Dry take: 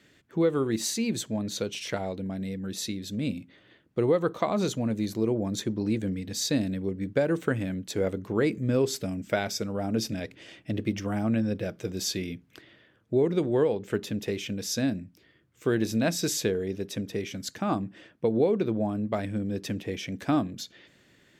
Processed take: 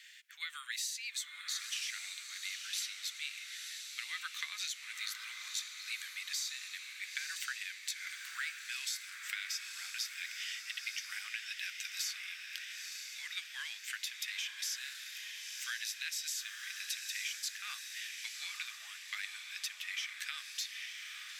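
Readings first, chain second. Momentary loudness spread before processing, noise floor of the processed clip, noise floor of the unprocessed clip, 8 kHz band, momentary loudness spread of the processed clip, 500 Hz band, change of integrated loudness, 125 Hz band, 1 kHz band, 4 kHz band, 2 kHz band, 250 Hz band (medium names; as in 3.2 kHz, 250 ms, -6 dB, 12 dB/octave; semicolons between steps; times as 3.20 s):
9 LU, -50 dBFS, -62 dBFS, -3.0 dB, 5 LU, under -40 dB, -10.5 dB, under -40 dB, -17.5 dB, -0.5 dB, 0.0 dB, under -40 dB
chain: steep high-pass 1.8 kHz 36 dB/octave; compression 12:1, threshold -45 dBFS, peak gain reduction 19 dB; echo that smears into a reverb 950 ms, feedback 51%, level -5 dB; trim +8.5 dB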